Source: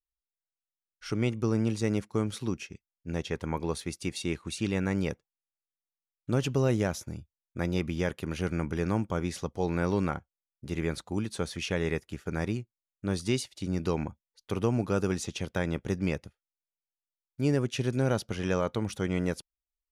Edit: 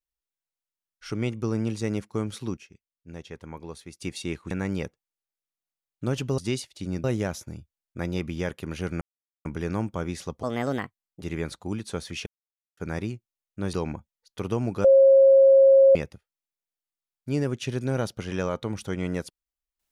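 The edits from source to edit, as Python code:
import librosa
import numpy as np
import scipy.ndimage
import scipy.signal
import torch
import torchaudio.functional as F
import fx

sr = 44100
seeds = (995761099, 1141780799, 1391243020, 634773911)

y = fx.edit(x, sr, fx.clip_gain(start_s=2.57, length_s=1.43, db=-8.0),
    fx.cut(start_s=4.51, length_s=0.26),
    fx.insert_silence(at_s=8.61, length_s=0.44),
    fx.speed_span(start_s=9.59, length_s=1.08, speed=1.38),
    fx.silence(start_s=11.72, length_s=0.51),
    fx.move(start_s=13.19, length_s=0.66, to_s=6.64),
    fx.bleep(start_s=14.96, length_s=1.11, hz=541.0, db=-11.5), tone=tone)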